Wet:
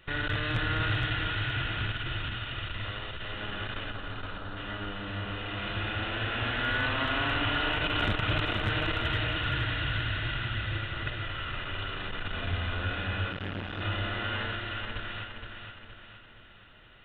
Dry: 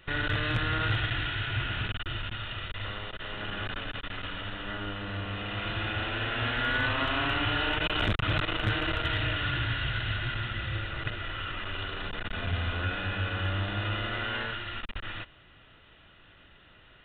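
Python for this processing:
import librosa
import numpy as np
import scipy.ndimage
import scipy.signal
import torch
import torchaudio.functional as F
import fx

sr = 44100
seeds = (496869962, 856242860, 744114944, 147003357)

y = fx.band_shelf(x, sr, hz=2500.0, db=-15.0, octaves=1.1, at=(3.9, 4.57))
y = fx.echo_feedback(y, sr, ms=468, feedback_pct=48, wet_db=-6)
y = fx.transformer_sat(y, sr, knee_hz=510.0, at=(13.3, 13.81))
y = y * 10.0 ** (-1.5 / 20.0)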